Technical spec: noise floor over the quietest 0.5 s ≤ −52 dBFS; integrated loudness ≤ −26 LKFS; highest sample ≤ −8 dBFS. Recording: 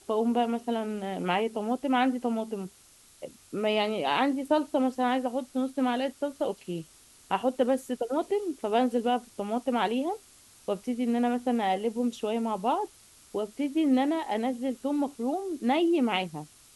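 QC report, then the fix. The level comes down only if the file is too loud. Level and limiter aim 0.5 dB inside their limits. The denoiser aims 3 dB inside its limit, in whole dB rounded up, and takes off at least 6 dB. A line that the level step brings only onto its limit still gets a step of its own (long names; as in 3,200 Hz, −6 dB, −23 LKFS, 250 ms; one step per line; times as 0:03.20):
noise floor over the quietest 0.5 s −57 dBFS: in spec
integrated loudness −29.0 LKFS: in spec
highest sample −12.5 dBFS: in spec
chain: no processing needed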